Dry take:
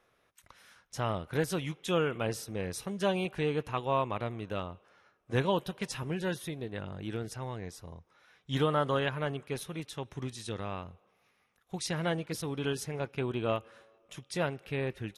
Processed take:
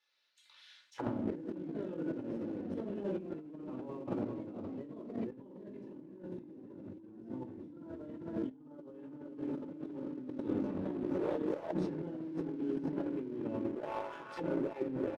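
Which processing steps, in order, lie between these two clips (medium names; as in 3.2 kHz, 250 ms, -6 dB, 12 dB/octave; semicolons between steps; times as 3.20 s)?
Doppler pass-by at 6.81 s, 5 m/s, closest 4.7 m; peaking EQ 610 Hz -7 dB 0.2 oct; comb 3.4 ms, depth 51%; simulated room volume 760 m³, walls furnished, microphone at 4.2 m; ever faster or slower copies 102 ms, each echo +2 st, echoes 3, each echo -6 dB; treble shelf 6.4 kHz -7 dB; on a send: echo that smears into a reverb 456 ms, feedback 65%, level -10 dB; on the sum: auto-wah 280–4600 Hz, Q 2.9, down, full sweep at -42 dBFS; band-stop 1.2 kHz, Q 13; waveshaping leveller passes 1; square tremolo 0.94 Hz, depth 60%, duty 85%; compressor with a negative ratio -52 dBFS, ratio -1; trim +9.5 dB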